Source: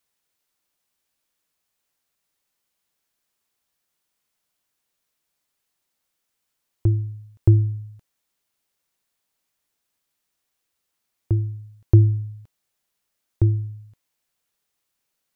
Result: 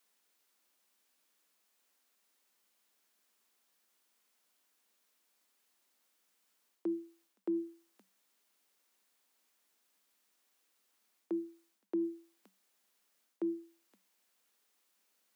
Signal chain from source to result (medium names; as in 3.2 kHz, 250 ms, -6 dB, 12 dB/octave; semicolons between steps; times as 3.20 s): Chebyshev high-pass 190 Hz, order 10; reverse; compression 6:1, threshold -35 dBFS, peak gain reduction 13.5 dB; reverse; trim +2.5 dB